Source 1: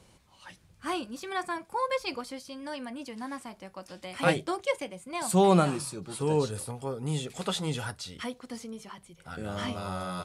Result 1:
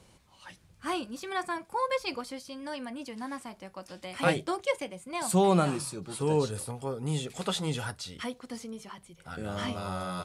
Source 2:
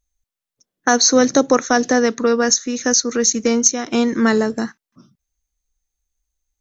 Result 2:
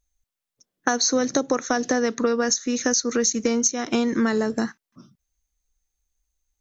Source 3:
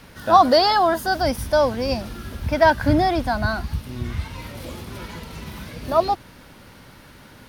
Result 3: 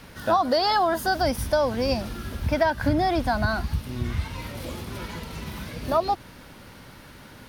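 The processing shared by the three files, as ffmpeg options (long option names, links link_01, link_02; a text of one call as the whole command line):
ffmpeg -i in.wav -af "acompressor=threshold=-18dB:ratio=6" out.wav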